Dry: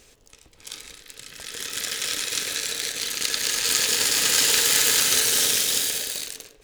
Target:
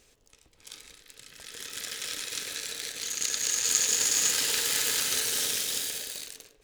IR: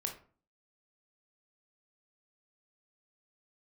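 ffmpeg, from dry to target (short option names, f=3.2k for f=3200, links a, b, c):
-filter_complex "[0:a]asettb=1/sr,asplit=3[a][b][c];[a]atrim=end=3.034[d];[b]atrim=start=3.03:end=4.32,asetpts=PTS-STARTPTS,afade=t=in:d=0.004:c=qsin,afade=t=out:st=1.286:d=0.004:c=qsin,equalizer=f=6.7k:t=o:w=0.28:g=11[e];[c]atrim=start=4.316[f];[d][e]acrossfade=d=0.004:c1=hsin:c2=qsin[g];[g][f]acrossfade=d=0.004:c1=qsin:c2=hsin,volume=-8dB"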